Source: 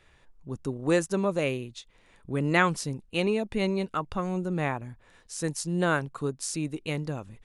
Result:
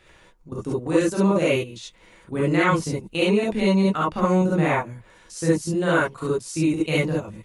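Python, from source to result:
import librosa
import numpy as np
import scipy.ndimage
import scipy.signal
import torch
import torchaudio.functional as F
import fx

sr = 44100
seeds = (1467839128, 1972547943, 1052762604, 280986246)

y = fx.low_shelf(x, sr, hz=60.0, db=-4.0)
y = fx.level_steps(y, sr, step_db=16)
y = fx.rev_gated(y, sr, seeds[0], gate_ms=90, shape='rising', drr_db=-6.5)
y = y * 10.0 ** (5.5 / 20.0)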